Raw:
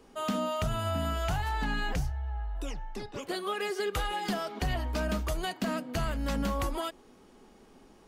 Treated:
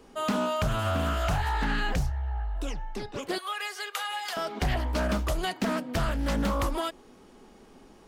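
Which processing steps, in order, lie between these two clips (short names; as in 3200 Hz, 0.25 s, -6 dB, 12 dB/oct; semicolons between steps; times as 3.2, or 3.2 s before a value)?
3.38–4.37 Bessel high-pass 990 Hz, order 4; Doppler distortion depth 0.36 ms; gain +3.5 dB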